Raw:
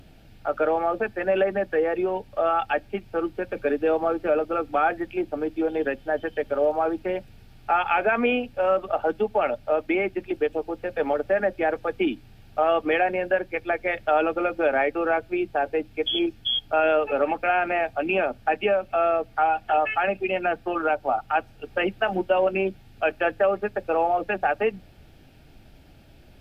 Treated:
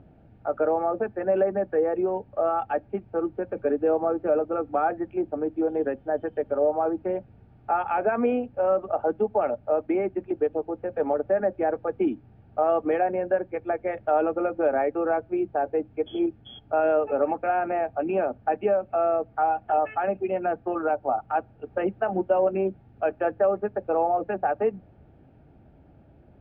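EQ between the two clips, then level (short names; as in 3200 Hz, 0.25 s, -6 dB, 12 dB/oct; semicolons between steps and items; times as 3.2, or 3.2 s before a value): HPF 61 Hz; LPF 1000 Hz 12 dB/oct; 0.0 dB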